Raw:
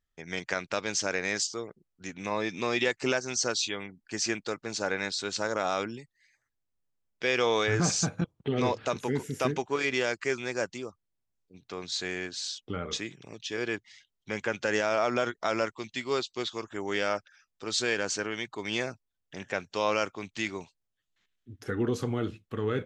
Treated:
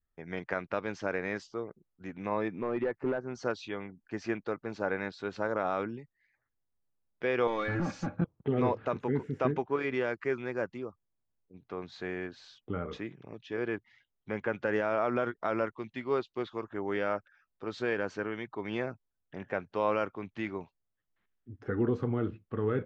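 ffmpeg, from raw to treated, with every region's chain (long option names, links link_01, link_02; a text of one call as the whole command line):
ffmpeg -i in.wav -filter_complex "[0:a]asettb=1/sr,asplit=3[link_01][link_02][link_03];[link_01]atrim=end=2.484[link_04];[link_02]atrim=start=2.48:end=3.35,asetpts=PTS-STARTPTS,afade=type=in:duration=0.004:curve=qsin,afade=type=out:start_time=0.866:duration=0.004:curve=qsin,acrossover=split=3700[link_05][link_06];[link_06]acompressor=threshold=-56dB:ratio=4:attack=1:release=60[link_07];[link_05][link_07]amix=inputs=2:normalize=0,equalizer=frequency=3800:width_type=o:width=1.8:gain=-12,asoftclip=type=hard:threshold=-24dB[link_08];[link_03]atrim=start=3.346[link_09];[link_04][link_08]acrossfade=duration=0.004:curve1=hsin:curve2=qsin[link_10];[link_10][link_09]acrossfade=duration=0.004:curve1=qsin:curve2=hsin,asettb=1/sr,asplit=3[link_11][link_12][link_13];[link_11]atrim=end=7.474[link_14];[link_12]atrim=start=7.47:end=8.17,asetpts=PTS-STARTPTS,afade=type=in:duration=0.004:curve=qsin,afade=type=out:start_time=0.696:duration=0.004:curve=qsin,equalizer=frequency=470:width_type=o:width=0.2:gain=-6.5,volume=24.5dB,asoftclip=hard,volume=-24.5dB,aecho=1:1:3.6:0.59,atrim=end_sample=30870[link_15];[link_13]atrim=start=8.166[link_16];[link_14][link_15]acrossfade=duration=0.004:curve1=hsin:curve2=qsin[link_17];[link_17][link_16]acrossfade=duration=0.004:curve1=qsin:curve2=hsin,lowpass=1500,adynamicequalizer=threshold=0.00708:dfrequency=690:dqfactor=1.7:tfrequency=690:tqfactor=1.7:attack=5:release=100:ratio=0.375:range=2:mode=cutabove:tftype=bell" out.wav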